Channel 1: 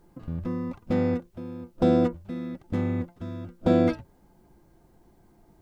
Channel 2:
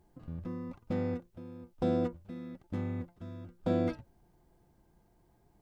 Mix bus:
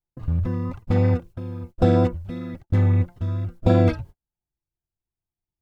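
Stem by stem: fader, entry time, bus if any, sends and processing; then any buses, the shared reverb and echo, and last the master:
+2.5 dB, 0.00 s, no send, resonant low shelf 150 Hz +9 dB, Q 1.5; vibrato 3 Hz 25 cents
+1.5 dB, 0.00 s, no send, stepped high-pass 9.2 Hz 790–3000 Hz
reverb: off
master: gate -38 dBFS, range -42 dB

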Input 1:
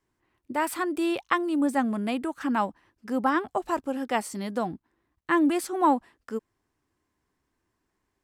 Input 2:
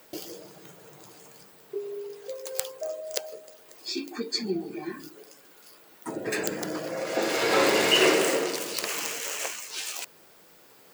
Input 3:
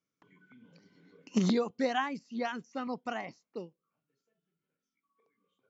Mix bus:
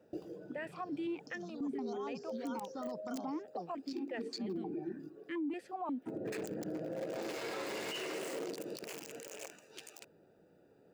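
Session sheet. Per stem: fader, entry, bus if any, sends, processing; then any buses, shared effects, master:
-1.0 dB, 0.00 s, no send, vowel sequencer 5.6 Hz
-1.5 dB, 0.00 s, no send, Wiener smoothing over 41 samples
-6.5 dB, 0.00 s, no send, FFT band-reject 1500–3100 Hz; bell 5200 Hz +7.5 dB 0.23 oct; negative-ratio compressor -37 dBFS, ratio -1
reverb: off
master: limiter -32 dBFS, peak gain reduction 24.5 dB

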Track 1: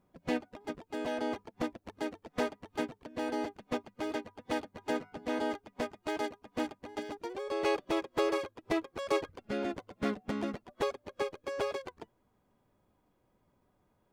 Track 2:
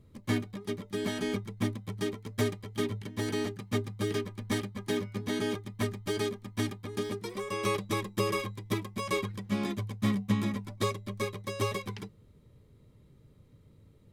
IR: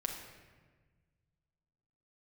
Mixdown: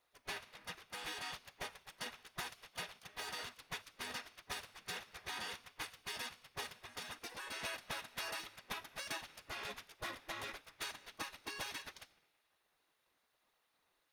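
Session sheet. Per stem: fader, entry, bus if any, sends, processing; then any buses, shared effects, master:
-3.0 dB, 0.00 s, send -23 dB, LFO notch sine 3.4 Hz 370–3600 Hz
-2.0 dB, 0.00 s, send -7 dB, minimum comb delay 1.1 ms; HPF 1100 Hz 24 dB/oct; flange 1.4 Hz, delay 0.3 ms, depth 5.3 ms, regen +42%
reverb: on, RT60 1.4 s, pre-delay 6 ms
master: notch 7600 Hz, Q 6.5; spectral gate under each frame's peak -10 dB weak; compressor, threshold -39 dBFS, peak gain reduction 6 dB

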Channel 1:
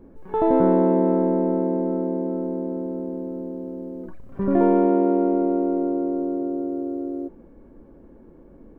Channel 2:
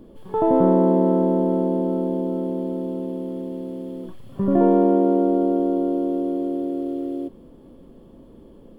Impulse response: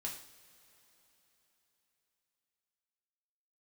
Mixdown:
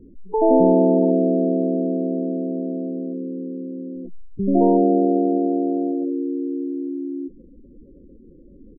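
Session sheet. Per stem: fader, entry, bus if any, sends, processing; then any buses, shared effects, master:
+2.0 dB, 0.00 s, send -24 dB, Wiener smoothing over 41 samples; LPF 1200 Hz 24 dB/oct
-10.0 dB, 3.9 ms, send -3.5 dB, resonator 130 Hz, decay 0.22 s, harmonics all, mix 70%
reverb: on, pre-delay 3 ms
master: spectral gate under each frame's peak -15 dB strong; bell 840 Hz +3 dB

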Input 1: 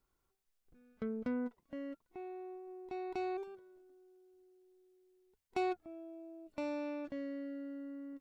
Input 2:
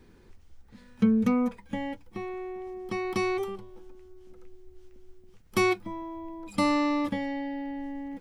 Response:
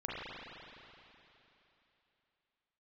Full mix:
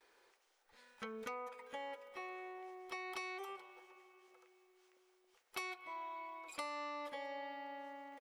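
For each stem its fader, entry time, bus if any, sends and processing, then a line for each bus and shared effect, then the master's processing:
-13.5 dB, 0.00 s, no send, band shelf 2400 Hz +15.5 dB 2.4 oct
-4.5 dB, 6.9 ms, send -18 dB, HPF 530 Hz 24 dB/oct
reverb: on, RT60 3.2 s, pre-delay 34 ms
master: compressor 6:1, threshold -42 dBFS, peak gain reduction 14 dB

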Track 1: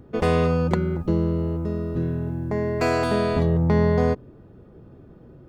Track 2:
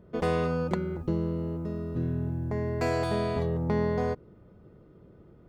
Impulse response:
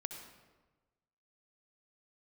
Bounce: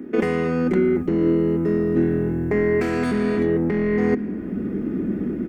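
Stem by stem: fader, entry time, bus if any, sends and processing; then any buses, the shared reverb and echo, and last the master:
+1.5 dB, 0.00 s, no send, elliptic high-pass 220 Hz; negative-ratio compressor -27 dBFS, ratio -1
-8.5 dB, 3.8 ms, send -5.5 dB, bell 200 Hz +11.5 dB 0.33 oct; AGC gain up to 13.5 dB; soft clip -18 dBFS, distortion -8 dB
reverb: on, RT60 1.3 s, pre-delay 59 ms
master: graphic EQ 125/250/500/1000/2000/4000 Hz -5/+10/-12/-7/+11/-8 dB; vocal rider within 10 dB 0.5 s; bell 400 Hz +10.5 dB 1.2 oct

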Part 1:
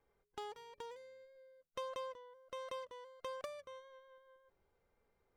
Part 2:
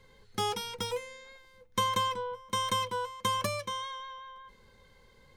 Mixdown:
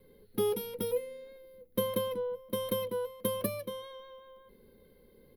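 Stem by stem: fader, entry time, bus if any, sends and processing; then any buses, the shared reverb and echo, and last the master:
+0.5 dB, 0.00 s, no send, dry
-4.0 dB, 1.3 ms, no send, dry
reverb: off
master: EQ curve 120 Hz 0 dB, 220 Hz +10 dB, 430 Hz +11 dB, 910 Hz -8 dB, 4300 Hz -5 dB, 7400 Hz -21 dB, 11000 Hz +14 dB

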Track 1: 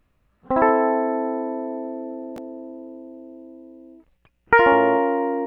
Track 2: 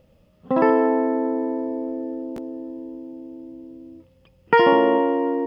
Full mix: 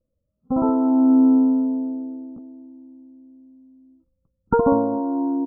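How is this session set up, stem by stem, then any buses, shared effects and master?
-4.0 dB, 0.00 s, no send, vocal rider within 4 dB 0.5 s; resonant low shelf 330 Hz +11 dB, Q 3
-5.0 dB, 8 ms, no send, spectral gate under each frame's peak -15 dB strong; tilt shelf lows +8 dB, about 1100 Hz; endless phaser +0.48 Hz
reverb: off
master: brick-wall FIR low-pass 1400 Hz; upward expander 2.5:1, over -26 dBFS

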